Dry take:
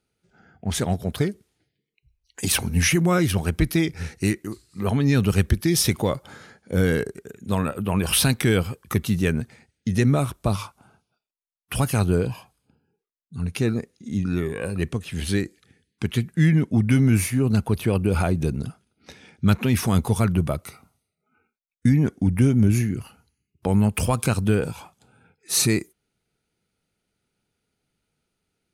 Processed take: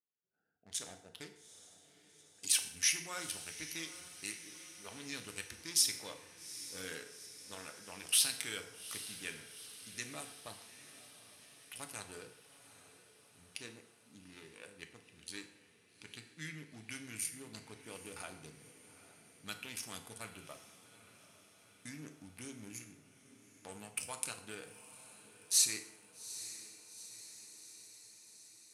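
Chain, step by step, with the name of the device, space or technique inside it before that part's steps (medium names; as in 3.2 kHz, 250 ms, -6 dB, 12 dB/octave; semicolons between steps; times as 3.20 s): local Wiener filter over 41 samples; piezo pickup straight into a mixer (low-pass 8 kHz 12 dB/octave; differentiator); echo that smears into a reverb 829 ms, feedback 62%, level -14 dB; FDN reverb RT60 0.84 s, low-frequency decay 0.75×, high-frequency decay 0.7×, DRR 5 dB; trim -3 dB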